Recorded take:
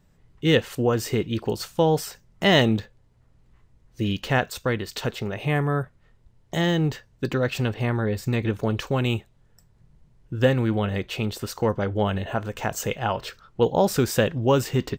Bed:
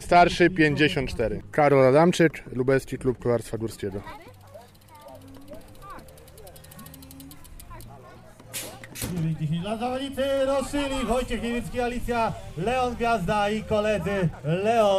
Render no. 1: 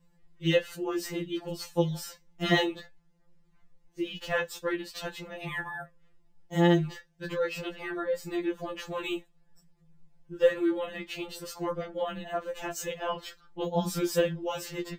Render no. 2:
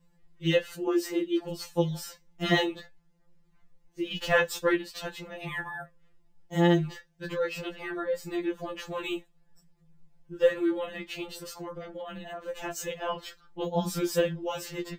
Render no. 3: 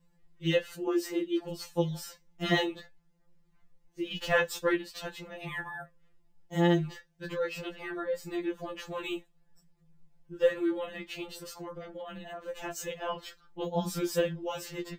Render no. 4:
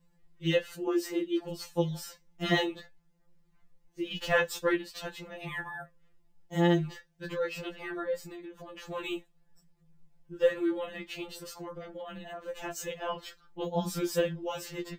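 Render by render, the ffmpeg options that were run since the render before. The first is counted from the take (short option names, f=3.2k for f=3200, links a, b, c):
-af "flanger=delay=7.5:depth=8.1:regen=44:speed=0.23:shape=triangular,afftfilt=real='re*2.83*eq(mod(b,8),0)':imag='im*2.83*eq(mod(b,8),0)':win_size=2048:overlap=0.75"
-filter_complex "[0:a]asettb=1/sr,asplit=3[a][b][c];[a]atrim=end=0.874[d];[b]atrim=start=0.87:end=1.41,asetpts=PTS-STARTPTS,afade=t=in:d=0.004:c=qsin,afade=t=out:st=0.536:d=0.004:c=qsin,lowshelf=f=210:t=q:w=3:g=-11.5[e];[c]atrim=start=1.406[f];[d][e]acrossfade=d=0.004:c1=hsin:c2=qsin[g];[g][f]acrossfade=d=0.004:c1=qsin:c2=hsin,asplit=3[h][i][j];[h]afade=t=out:st=4.1:d=0.02[k];[i]acontrast=48,afade=t=in:st=4.1:d=0.02,afade=t=out:st=4.77:d=0.02[l];[j]afade=t=in:st=4.77:d=0.02[m];[k][l][m]amix=inputs=3:normalize=0,asettb=1/sr,asplit=3[n][o][p];[n]atrim=end=11.334[q];[o]atrim=start=11.33:end=12.48,asetpts=PTS-STARTPTS,afade=t=in:d=0.004:c=qsin,afade=t=out:st=1.146:d=0.004:c=qsin,acompressor=threshold=-36dB:ratio=4:attack=3.2:release=140:knee=1:detection=peak[r];[p]atrim=start=12.476[s];[q][r]acrossfade=d=0.004:c1=hsin:c2=qsin[t];[t][s]acrossfade=d=0.004:c1=qsin:c2=hsin"
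-af "volume=-2.5dB"
-filter_complex "[0:a]asettb=1/sr,asplit=3[a][b][c];[a]atrim=end=8.204[d];[b]atrim=start=8.2:end=8.89,asetpts=PTS-STARTPTS,afade=t=in:d=0.004:c=qsin,afade=t=out:st=0.686:d=0.004:c=qsin,acompressor=threshold=-41dB:ratio=8:attack=3.2:release=140:knee=1:detection=peak[e];[c]atrim=start=8.886[f];[d][e]acrossfade=d=0.004:c1=hsin:c2=qsin[g];[g][f]acrossfade=d=0.004:c1=qsin:c2=hsin"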